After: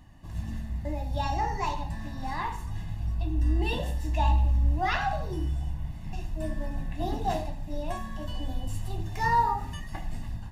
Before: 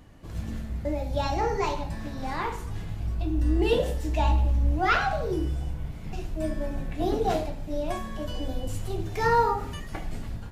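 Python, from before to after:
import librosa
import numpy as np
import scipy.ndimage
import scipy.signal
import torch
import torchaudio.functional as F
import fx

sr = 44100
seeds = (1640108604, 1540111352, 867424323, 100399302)

y = x + 0.69 * np.pad(x, (int(1.1 * sr / 1000.0), 0))[:len(x)]
y = y * 10.0 ** (-4.5 / 20.0)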